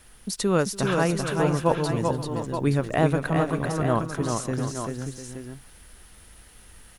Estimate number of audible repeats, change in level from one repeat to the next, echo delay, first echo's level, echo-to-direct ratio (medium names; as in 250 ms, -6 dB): 5, no regular repeats, 289 ms, -19.5 dB, -2.0 dB